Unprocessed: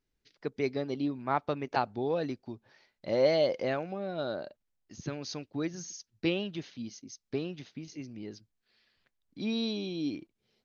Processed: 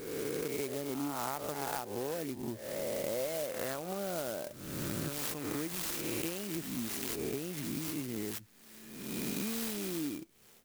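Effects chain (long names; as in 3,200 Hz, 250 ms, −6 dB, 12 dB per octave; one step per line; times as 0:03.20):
peak hold with a rise ahead of every peak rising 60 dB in 1.15 s
high-shelf EQ 3,100 Hz +9.5 dB
downward compressor 10 to 1, threshold −41 dBFS, peak gain reduction 22.5 dB
converter with an unsteady clock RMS 0.084 ms
level +7.5 dB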